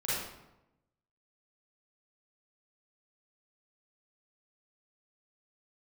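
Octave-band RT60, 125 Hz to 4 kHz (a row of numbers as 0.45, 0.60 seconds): 1.2, 1.1, 0.95, 0.90, 0.75, 0.60 seconds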